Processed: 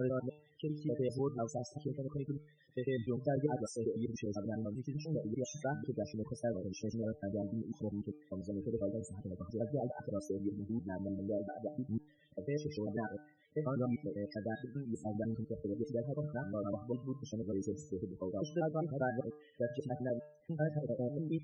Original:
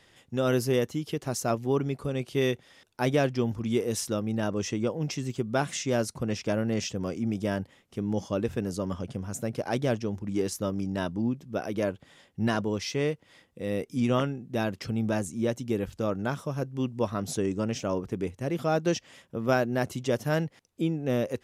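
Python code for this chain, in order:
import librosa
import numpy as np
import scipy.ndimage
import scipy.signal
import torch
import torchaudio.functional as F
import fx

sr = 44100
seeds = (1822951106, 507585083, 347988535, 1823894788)

y = fx.block_reorder(x, sr, ms=99.0, group=6)
y = fx.comb_fb(y, sr, f0_hz=150.0, decay_s=0.56, harmonics='all', damping=0.0, mix_pct=70)
y = fx.spec_topn(y, sr, count=16)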